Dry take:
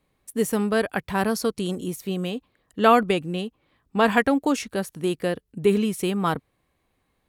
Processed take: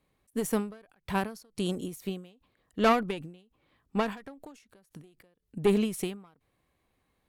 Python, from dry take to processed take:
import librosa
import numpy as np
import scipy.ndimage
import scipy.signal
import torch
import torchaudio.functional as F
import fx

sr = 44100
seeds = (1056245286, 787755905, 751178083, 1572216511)

y = fx.tube_stage(x, sr, drive_db=14.0, bias=0.45)
y = fx.end_taper(y, sr, db_per_s=120.0)
y = y * librosa.db_to_amplitude(-1.5)